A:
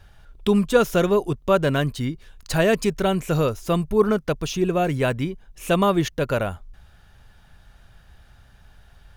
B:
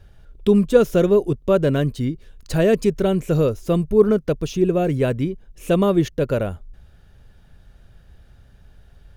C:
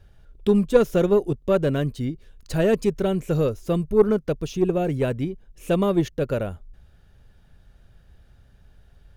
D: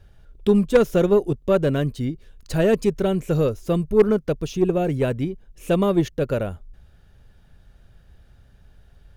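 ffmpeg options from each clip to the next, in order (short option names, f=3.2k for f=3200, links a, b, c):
-af "lowshelf=f=640:t=q:w=1.5:g=6.5,volume=-4dB"
-af "aeval=exprs='0.891*(cos(1*acos(clip(val(0)/0.891,-1,1)))-cos(1*PI/2))+0.141*(cos(2*acos(clip(val(0)/0.891,-1,1)))-cos(2*PI/2))+0.0224*(cos(7*acos(clip(val(0)/0.891,-1,1)))-cos(7*PI/2))':c=same,volume=-2.5dB"
-af "aeval=exprs='0.447*(abs(mod(val(0)/0.447+3,4)-2)-1)':c=same,volume=1.5dB"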